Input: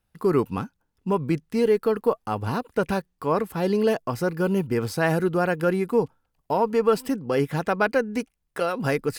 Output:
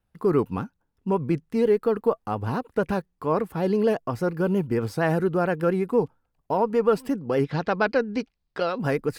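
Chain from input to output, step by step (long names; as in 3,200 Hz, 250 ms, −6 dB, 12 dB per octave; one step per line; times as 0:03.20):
pitch vibrato 8.6 Hz 56 cents
0:07.44–0:08.78: low-pass with resonance 4,500 Hz, resonance Q 3.2
high-shelf EQ 2,300 Hz −8 dB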